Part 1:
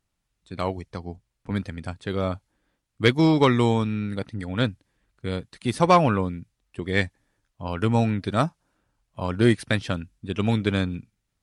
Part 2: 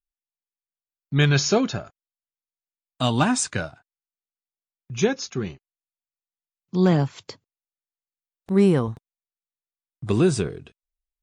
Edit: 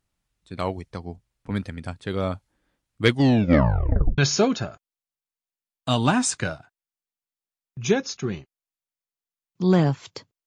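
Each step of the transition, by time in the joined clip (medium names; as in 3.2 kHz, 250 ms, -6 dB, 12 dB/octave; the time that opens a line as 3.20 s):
part 1
3.07 s: tape stop 1.11 s
4.18 s: go over to part 2 from 1.31 s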